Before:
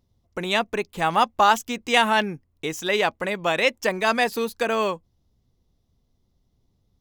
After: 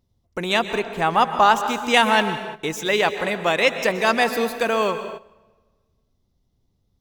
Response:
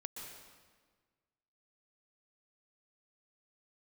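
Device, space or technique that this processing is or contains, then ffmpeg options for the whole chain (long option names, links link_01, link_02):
keyed gated reverb: -filter_complex "[0:a]asplit=3[link_01][link_02][link_03];[1:a]atrim=start_sample=2205[link_04];[link_02][link_04]afir=irnorm=-1:irlink=0[link_05];[link_03]apad=whole_len=308748[link_06];[link_05][link_06]sidechaingate=range=-13dB:threshold=-55dB:ratio=16:detection=peak,volume=0.5dB[link_07];[link_01][link_07]amix=inputs=2:normalize=0,asettb=1/sr,asplit=3[link_08][link_09][link_10];[link_08]atrim=end=0.794[link_11];[link_09]atrim=start=0.79:end=1.66,asetpts=PTS-STARTPTS,afade=type=in:duration=0.004:curve=qsin,afade=type=out:start_time=0.866:duration=0.004:curve=qsin,highshelf=frequency=4600:gain=-6.5[link_12];[link_10]atrim=start=1.656[link_13];[link_11][link_12]acrossfade=duration=0.004:curve1=hsin:curve2=qsin[link_14];[link_14][link_13]acrossfade=duration=0.004:curve1=qsin:curve2=hsin,volume=-2dB"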